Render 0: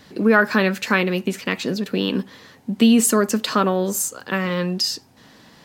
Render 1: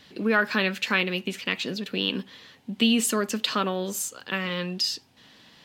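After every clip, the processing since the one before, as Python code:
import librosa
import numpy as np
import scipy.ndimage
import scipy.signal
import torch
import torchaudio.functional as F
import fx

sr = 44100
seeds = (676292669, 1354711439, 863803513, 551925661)

y = fx.peak_eq(x, sr, hz=3100.0, db=10.5, octaves=1.2)
y = F.gain(torch.from_numpy(y), -8.5).numpy()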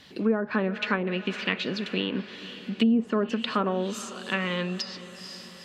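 y = fx.echo_diffused(x, sr, ms=465, feedback_pct=58, wet_db=-16.0)
y = fx.env_lowpass_down(y, sr, base_hz=570.0, full_db=-18.0)
y = F.gain(torch.from_numpy(y), 1.0).numpy()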